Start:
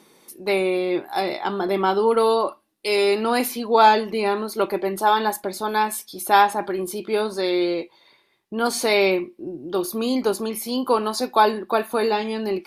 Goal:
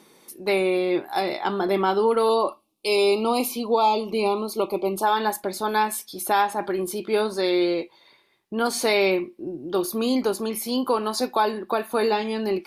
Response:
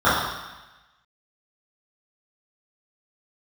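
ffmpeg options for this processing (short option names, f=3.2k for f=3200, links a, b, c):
-filter_complex "[0:a]alimiter=limit=-10.5dB:level=0:latency=1:release=272,asettb=1/sr,asplit=3[a][b][c];[a]atrim=end=2.294[d];[b]atrim=start=2.29:end=5.03,asetpts=PTS-STARTPTS,afade=t=in:d=0.004:c=qsin,afade=t=out:st=2.736:d=0.004:c=qsin,asuperstop=centerf=1700:order=8:qfactor=1.8[e];[c]atrim=start=5.026[f];[d][e]acrossfade=d=0.004:c1=hsin:c2=qsin[g];[g][f]acrossfade=d=0.004:c1=qsin:c2=hsin"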